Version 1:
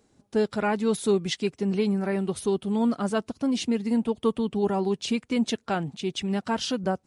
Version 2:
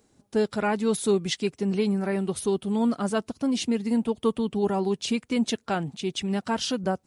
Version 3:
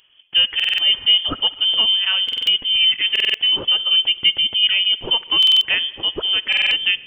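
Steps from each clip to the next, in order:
high shelf 8100 Hz +6 dB
reverb RT60 2.3 s, pre-delay 54 ms, DRR 18.5 dB; inverted band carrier 3300 Hz; stuck buffer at 0.55/2.24/3.11/5.38/6.48, samples 2048, times 4; gain +7.5 dB

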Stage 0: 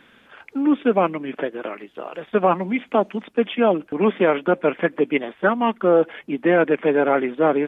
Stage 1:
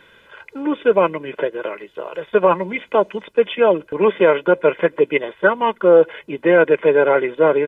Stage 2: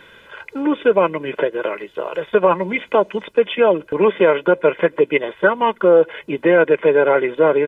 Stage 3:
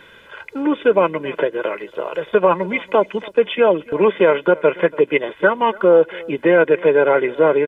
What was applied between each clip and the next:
comb 2 ms, depth 69%; gain +1.5 dB
compressor 1.5:1, threshold -22 dBFS, peak gain reduction 5.5 dB; gain +4.5 dB
echo 0.283 s -22 dB

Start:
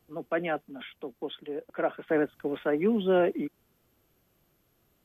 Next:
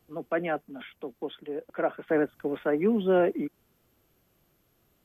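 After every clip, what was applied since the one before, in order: dynamic EQ 3400 Hz, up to -5 dB, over -54 dBFS, Q 1.4; gain +1 dB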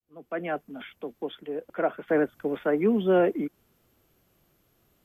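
opening faded in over 0.67 s; gain +1.5 dB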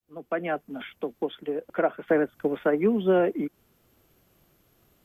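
in parallel at -1 dB: compressor, threshold -33 dBFS, peak gain reduction 14.5 dB; on the sum: transient shaper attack +4 dB, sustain -1 dB; gain -2.5 dB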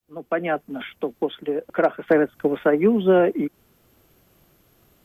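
hard clip -12 dBFS, distortion -40 dB; gain +5 dB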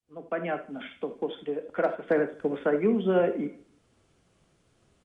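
feedback echo 0.154 s, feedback 31%, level -24 dB; non-linear reverb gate 0.11 s flat, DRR 7.5 dB; downsampling 22050 Hz; gain -7.5 dB

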